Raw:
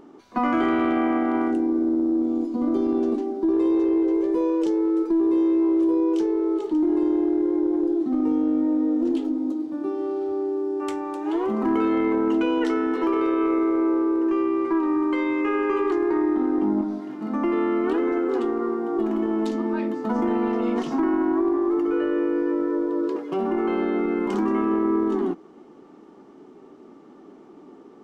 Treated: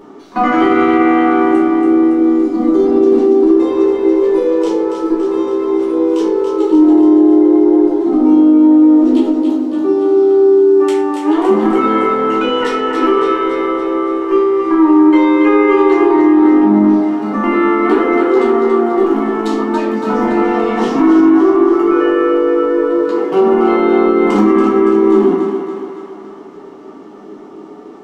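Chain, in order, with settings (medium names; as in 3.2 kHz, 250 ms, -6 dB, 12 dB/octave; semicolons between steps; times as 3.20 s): bass shelf 130 Hz -11 dB; on a send: thinning echo 282 ms, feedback 59%, high-pass 310 Hz, level -6.5 dB; on the sum: simulated room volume 58 m³, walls mixed, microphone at 1.1 m; loudness maximiser +8 dB; trim -1 dB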